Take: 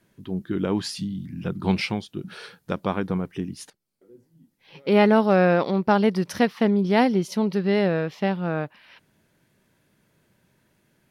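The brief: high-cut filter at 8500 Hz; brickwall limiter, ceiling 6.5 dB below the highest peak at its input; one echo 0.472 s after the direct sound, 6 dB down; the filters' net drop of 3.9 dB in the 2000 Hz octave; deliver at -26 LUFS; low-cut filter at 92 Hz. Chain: HPF 92 Hz; LPF 8500 Hz; bell 2000 Hz -5 dB; limiter -14 dBFS; echo 0.472 s -6 dB; gain -1 dB

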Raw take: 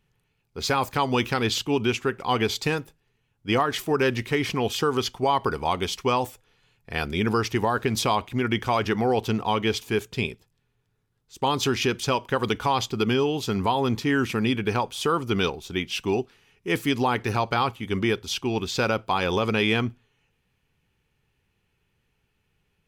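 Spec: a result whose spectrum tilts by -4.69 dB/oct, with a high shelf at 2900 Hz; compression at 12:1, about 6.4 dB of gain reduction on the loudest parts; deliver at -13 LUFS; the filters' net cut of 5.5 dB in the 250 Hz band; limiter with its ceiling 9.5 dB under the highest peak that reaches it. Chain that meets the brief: bell 250 Hz -7 dB; high shelf 2900 Hz -7 dB; compressor 12:1, threshold -26 dBFS; gain +22.5 dB; limiter -2.5 dBFS

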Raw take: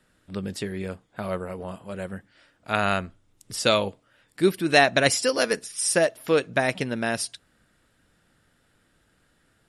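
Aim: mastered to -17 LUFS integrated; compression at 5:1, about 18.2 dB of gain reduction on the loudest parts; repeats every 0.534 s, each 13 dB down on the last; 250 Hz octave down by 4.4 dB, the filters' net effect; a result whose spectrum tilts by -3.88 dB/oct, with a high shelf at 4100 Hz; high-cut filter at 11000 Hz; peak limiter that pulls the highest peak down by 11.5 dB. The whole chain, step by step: LPF 11000 Hz; bell 250 Hz -6.5 dB; high shelf 4100 Hz -7 dB; compressor 5:1, threshold -35 dBFS; limiter -31.5 dBFS; feedback echo 0.534 s, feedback 22%, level -13 dB; gain +26 dB

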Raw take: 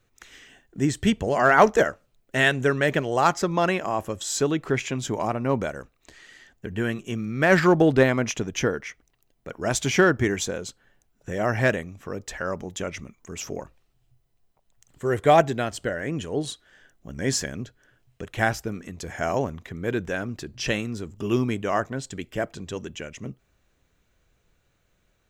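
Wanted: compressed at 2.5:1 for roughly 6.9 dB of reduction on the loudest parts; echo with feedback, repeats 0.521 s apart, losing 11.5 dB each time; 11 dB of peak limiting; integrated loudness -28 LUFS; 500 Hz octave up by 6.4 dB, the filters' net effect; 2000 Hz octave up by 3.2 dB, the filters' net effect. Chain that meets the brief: bell 500 Hz +8 dB; bell 2000 Hz +3.5 dB; compressor 2.5:1, threshold -17 dBFS; limiter -16 dBFS; feedback echo 0.521 s, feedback 27%, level -11.5 dB

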